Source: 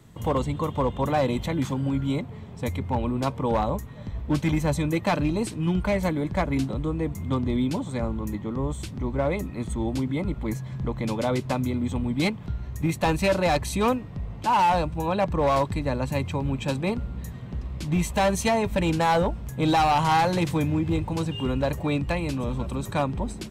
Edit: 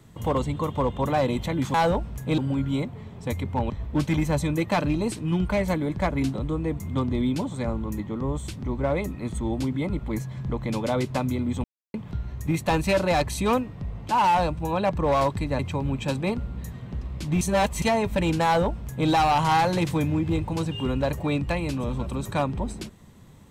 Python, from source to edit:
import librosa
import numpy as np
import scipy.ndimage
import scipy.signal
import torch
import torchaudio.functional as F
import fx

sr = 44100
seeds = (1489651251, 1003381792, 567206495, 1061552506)

y = fx.edit(x, sr, fx.cut(start_s=3.06, length_s=0.99),
    fx.silence(start_s=11.99, length_s=0.3),
    fx.cut(start_s=15.94, length_s=0.25),
    fx.reverse_span(start_s=18.01, length_s=0.41),
    fx.duplicate(start_s=19.05, length_s=0.64, to_s=1.74), tone=tone)